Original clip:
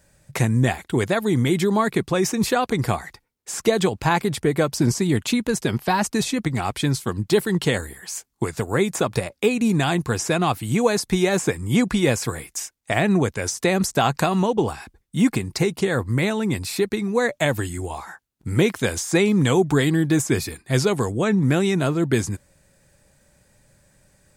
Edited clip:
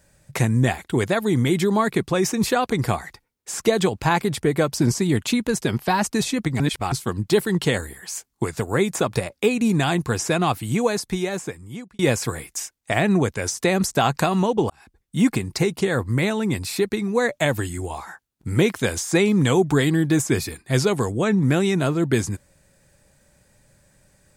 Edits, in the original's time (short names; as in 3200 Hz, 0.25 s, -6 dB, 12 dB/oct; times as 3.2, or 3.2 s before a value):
6.6–6.92 reverse
10.57–11.99 fade out linear
14.7–15.16 fade in